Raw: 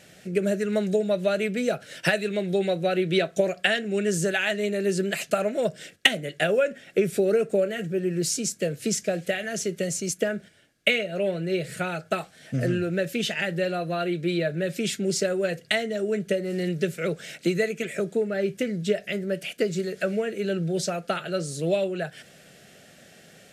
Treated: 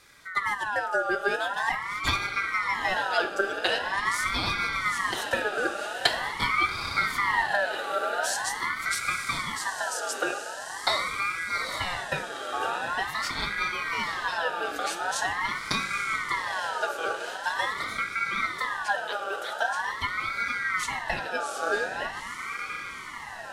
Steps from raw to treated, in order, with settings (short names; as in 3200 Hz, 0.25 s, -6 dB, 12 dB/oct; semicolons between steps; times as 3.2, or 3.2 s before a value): diffused feedback echo 0.859 s, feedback 63%, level -7 dB; FDN reverb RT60 1.1 s, high-frequency decay 0.6×, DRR 7.5 dB; ring modulator with a swept carrier 1400 Hz, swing 30%, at 0.44 Hz; gain -1.5 dB